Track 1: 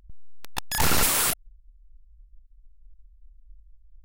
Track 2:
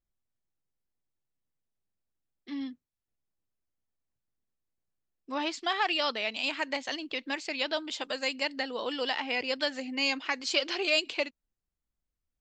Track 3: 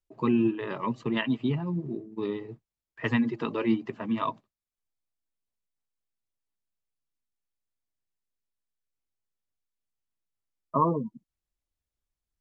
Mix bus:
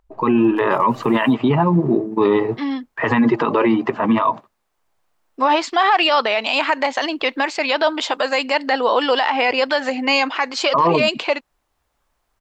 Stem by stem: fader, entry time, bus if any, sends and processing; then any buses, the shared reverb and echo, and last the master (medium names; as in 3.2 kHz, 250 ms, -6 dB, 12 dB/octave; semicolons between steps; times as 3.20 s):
-12.5 dB, 0.00 s, no bus, no send, compression 2:1, threshold -36 dBFS, peak gain reduction 10 dB; auto duck -14 dB, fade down 1.40 s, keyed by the third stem
-2.5 dB, 0.10 s, bus A, no send, none
+2.5 dB, 0.00 s, bus A, no send, none
bus A: 0.0 dB, level rider gain up to 11.5 dB; peak limiter -11 dBFS, peak gain reduction 9 dB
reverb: none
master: peaking EQ 920 Hz +15 dB 2.4 oct; peak limiter -7.5 dBFS, peak gain reduction 10.5 dB